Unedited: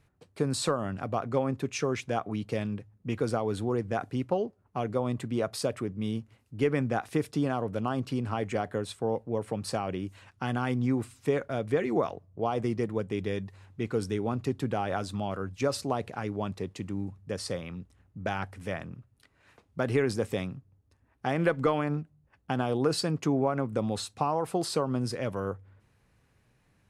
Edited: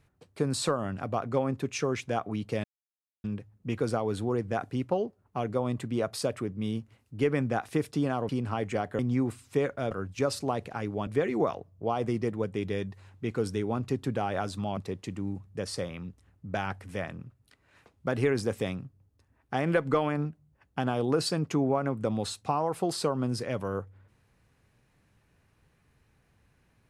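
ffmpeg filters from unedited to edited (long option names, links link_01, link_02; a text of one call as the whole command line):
ffmpeg -i in.wav -filter_complex "[0:a]asplit=7[link_01][link_02][link_03][link_04][link_05][link_06][link_07];[link_01]atrim=end=2.64,asetpts=PTS-STARTPTS,afade=type=out:start_time=2.636:duration=0.004:curve=hsin,apad=pad_dur=0.6[link_08];[link_02]atrim=start=2.64:end=7.692,asetpts=PTS-STARTPTS,afade=type=in:duration=0.004:curve=hsin[link_09];[link_03]atrim=start=8.088:end=8.792[link_10];[link_04]atrim=start=10.708:end=11.632[link_11];[link_05]atrim=start=15.328:end=16.492[link_12];[link_06]atrim=start=11.628:end=15.332[link_13];[link_07]atrim=start=16.488[link_14];[link_08][link_09]concat=n=2:v=0:a=1[link_15];[link_15][link_10]acrossfade=duration=0.004:curve1=hsin:curve2=hsin[link_16];[link_16][link_11]acrossfade=duration=0.004:curve1=hsin:curve2=hsin[link_17];[link_17][link_12]acrossfade=duration=0.004:curve1=hsin:curve2=hsin[link_18];[link_18][link_13]acrossfade=duration=0.004:curve1=hsin:curve2=hsin[link_19];[link_19][link_14]acrossfade=duration=0.004:curve1=hsin:curve2=hsin" out.wav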